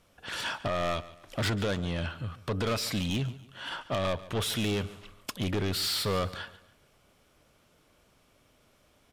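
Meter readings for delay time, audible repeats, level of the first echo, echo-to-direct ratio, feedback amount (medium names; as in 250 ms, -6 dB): 142 ms, 2, -17.5 dB, -17.0 dB, 36%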